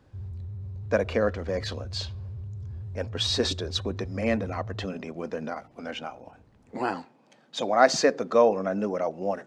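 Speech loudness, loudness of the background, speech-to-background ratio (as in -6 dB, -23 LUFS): -27.5 LUFS, -38.5 LUFS, 11.0 dB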